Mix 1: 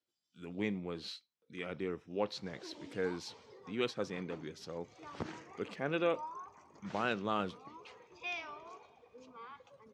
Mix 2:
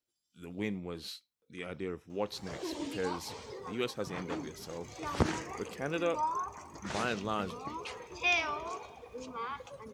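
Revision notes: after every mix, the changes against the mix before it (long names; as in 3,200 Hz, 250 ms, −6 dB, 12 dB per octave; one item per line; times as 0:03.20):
background +11.5 dB
master: remove band-pass filter 110–5,400 Hz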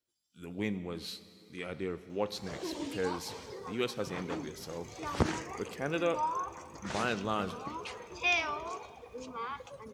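speech: send on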